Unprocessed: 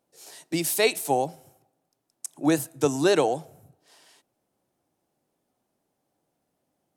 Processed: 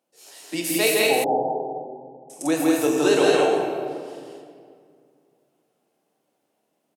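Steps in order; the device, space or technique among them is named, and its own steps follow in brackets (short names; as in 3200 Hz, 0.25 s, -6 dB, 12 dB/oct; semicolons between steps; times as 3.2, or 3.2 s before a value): stadium PA (HPF 220 Hz 12 dB/oct; bell 2800 Hz +4.5 dB 0.47 oct; loudspeakers at several distances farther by 56 m -2 dB, 72 m -2 dB; reverb RT60 2.2 s, pre-delay 3 ms, DRR 0.5 dB); 1.24–2.3 Chebyshev low-pass 940 Hz, order 6; gain -2 dB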